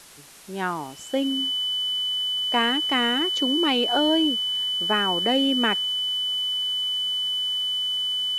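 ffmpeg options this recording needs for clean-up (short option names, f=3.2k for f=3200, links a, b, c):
-af "adeclick=t=4,bandreject=f=3k:w=30,afwtdn=0.005"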